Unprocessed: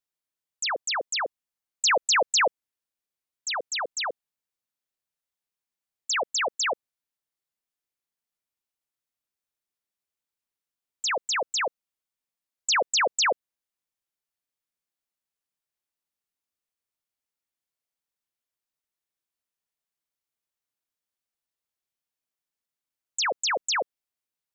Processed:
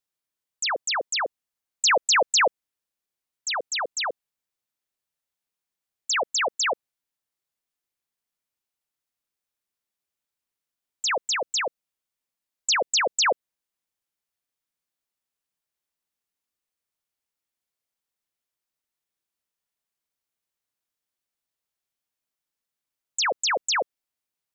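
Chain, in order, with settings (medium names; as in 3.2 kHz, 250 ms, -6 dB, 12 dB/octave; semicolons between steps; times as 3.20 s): 11.24–13.26 s: dynamic bell 1.1 kHz, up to -4 dB, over -33 dBFS, Q 0.83; trim +2 dB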